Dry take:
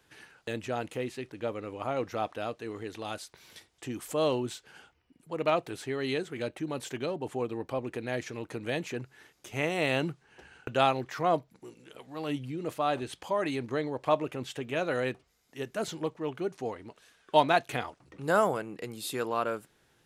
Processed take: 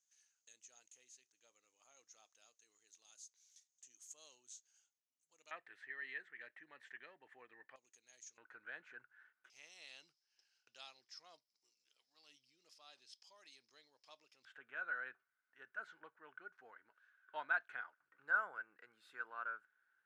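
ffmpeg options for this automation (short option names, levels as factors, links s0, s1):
-af "asetnsamples=n=441:p=0,asendcmd='5.51 bandpass f 1800;7.76 bandpass f 6500;8.38 bandpass f 1500;9.5 bandpass f 5200;14.45 bandpass f 1500',bandpass=f=6500:t=q:w=11:csg=0"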